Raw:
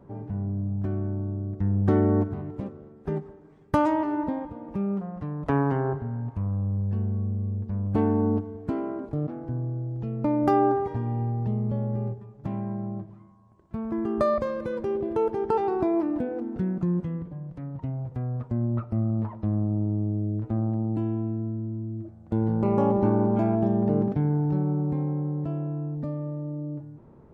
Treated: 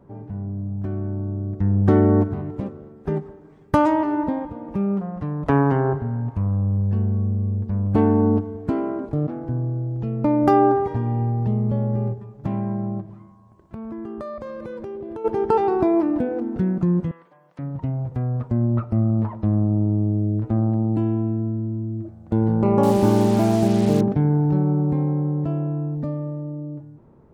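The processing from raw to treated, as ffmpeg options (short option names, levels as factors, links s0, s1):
-filter_complex "[0:a]asplit=3[s0][s1][s2];[s0]afade=t=out:st=13:d=0.02[s3];[s1]acompressor=threshold=0.0158:ratio=6:attack=3.2:release=140:knee=1:detection=peak,afade=t=in:st=13:d=0.02,afade=t=out:st=15.24:d=0.02[s4];[s2]afade=t=in:st=15.24:d=0.02[s5];[s3][s4][s5]amix=inputs=3:normalize=0,asettb=1/sr,asplit=3[s6][s7][s8];[s6]atrim=end=17.114[s9];[s7]atrim=start=17.11:end=17.59,asetpts=PTS-STARTPTS,afade=t=in:d=0.004:c=qsin,afade=t=out:st=0.476:d=0.004:c=qsin,highpass=990[s10];[s8]atrim=start=17.586[s11];[s9][s10]acrossfade=d=0.004:c1=hsin:c2=qsin[s12];[s12][s11]acrossfade=d=0.004:c1=qsin:c2=hsin,asettb=1/sr,asplit=3[s13][s14][s15];[s13]atrim=end=22.834[s16];[s14]atrim=start=22.83:end=24.01,asetpts=PTS-STARTPTS,afade=t=in:d=0.004:c=qsin,afade=t=out:st=1.176:d=0.004:c=qsin,acrusher=bits=5:mix=0:aa=0.5[s17];[s15]atrim=start=24.006[s18];[s16][s17]acrossfade=d=0.004:c1=hsin:c2=qsin[s19];[s19][s18]acrossfade=d=0.004:c1=qsin:c2=hsin,dynaudnorm=f=150:g=17:m=2"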